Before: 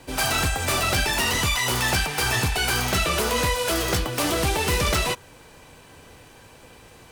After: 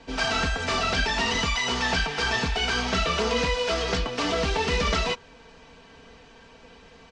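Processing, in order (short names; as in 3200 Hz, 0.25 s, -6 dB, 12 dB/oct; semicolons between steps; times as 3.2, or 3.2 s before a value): inverse Chebyshev low-pass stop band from 12000 Hz, stop band 50 dB; comb 4.4 ms, depth 68%; gain -3 dB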